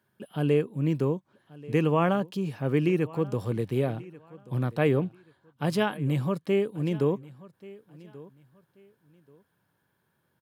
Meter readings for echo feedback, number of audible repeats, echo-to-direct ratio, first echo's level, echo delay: 25%, 2, -20.0 dB, -20.5 dB, 1134 ms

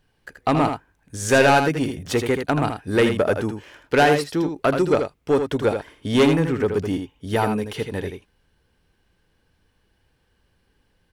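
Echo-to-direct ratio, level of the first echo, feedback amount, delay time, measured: -7.0 dB, -7.0 dB, no regular repeats, 80 ms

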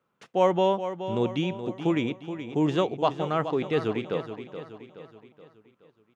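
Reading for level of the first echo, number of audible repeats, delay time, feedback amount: -10.5 dB, 4, 424 ms, 48%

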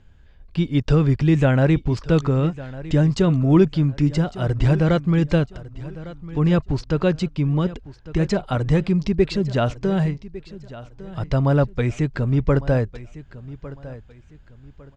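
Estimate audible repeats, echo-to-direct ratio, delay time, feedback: 2, -16.5 dB, 1154 ms, 31%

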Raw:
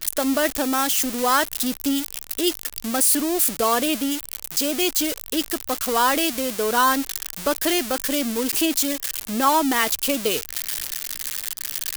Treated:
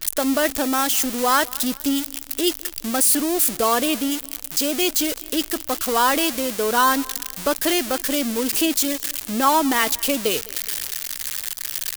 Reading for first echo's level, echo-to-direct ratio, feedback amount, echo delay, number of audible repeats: -22.5 dB, -21.5 dB, 45%, 207 ms, 2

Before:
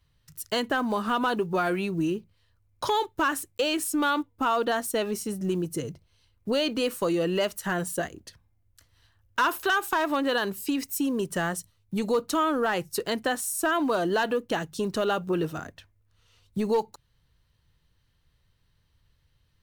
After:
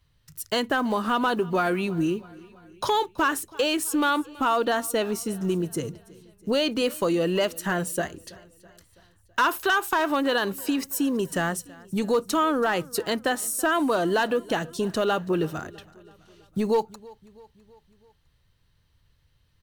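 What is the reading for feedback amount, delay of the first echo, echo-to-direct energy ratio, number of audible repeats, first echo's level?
57%, 328 ms, -21.0 dB, 3, -22.5 dB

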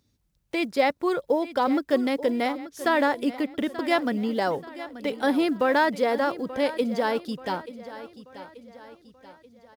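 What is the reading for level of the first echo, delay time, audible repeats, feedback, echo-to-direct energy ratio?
-15.0 dB, 883 ms, 3, 46%, -14.0 dB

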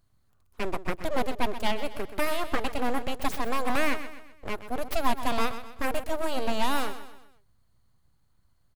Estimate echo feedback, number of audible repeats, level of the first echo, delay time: 43%, 4, -12.0 dB, 127 ms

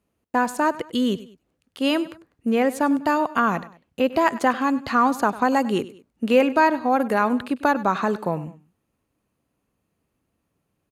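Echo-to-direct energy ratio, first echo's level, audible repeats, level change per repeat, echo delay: -17.0 dB, -17.5 dB, 2, -8.0 dB, 99 ms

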